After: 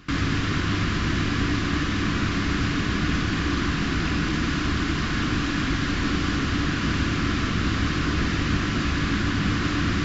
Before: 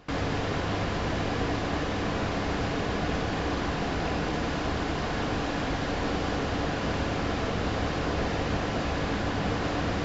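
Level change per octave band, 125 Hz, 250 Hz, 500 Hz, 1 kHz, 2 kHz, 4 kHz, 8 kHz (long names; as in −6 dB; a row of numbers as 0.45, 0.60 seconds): +6.5 dB, +6.0 dB, −4.0 dB, +0.5 dB, +6.5 dB, +6.5 dB, can't be measured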